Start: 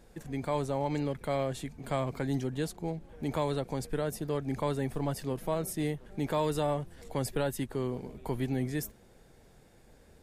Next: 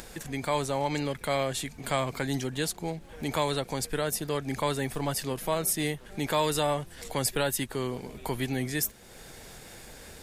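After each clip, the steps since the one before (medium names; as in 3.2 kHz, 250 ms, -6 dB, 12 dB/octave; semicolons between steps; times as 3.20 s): in parallel at -0.5 dB: upward compressor, threshold -32 dBFS; on the sum: tilt shelf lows -6 dB, about 1.1 kHz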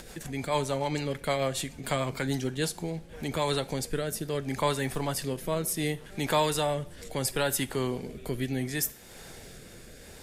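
rotary cabinet horn 6.7 Hz, later 0.7 Hz, at 2.73 s; on a send at -14 dB: reverberation, pre-delay 3 ms; on the sum: trim +2 dB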